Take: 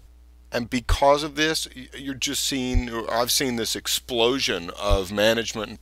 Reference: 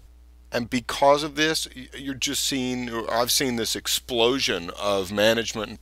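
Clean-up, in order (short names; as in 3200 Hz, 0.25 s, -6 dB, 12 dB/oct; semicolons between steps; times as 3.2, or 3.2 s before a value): 0.88–1 HPF 140 Hz 24 dB/oct; 2.73–2.85 HPF 140 Hz 24 dB/oct; 4.89–5.01 HPF 140 Hz 24 dB/oct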